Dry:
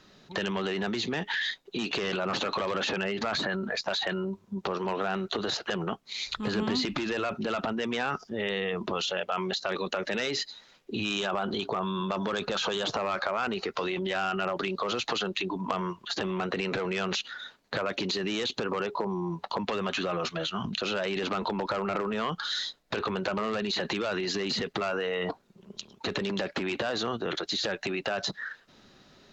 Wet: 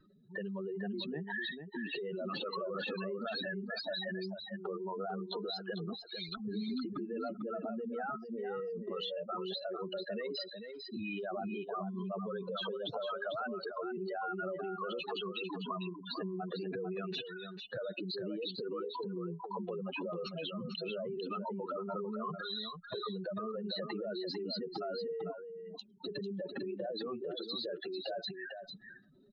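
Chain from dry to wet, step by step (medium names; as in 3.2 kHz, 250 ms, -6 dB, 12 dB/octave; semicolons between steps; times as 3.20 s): spectral contrast enhancement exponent 3.5; delay 448 ms -7.5 dB; trim -8 dB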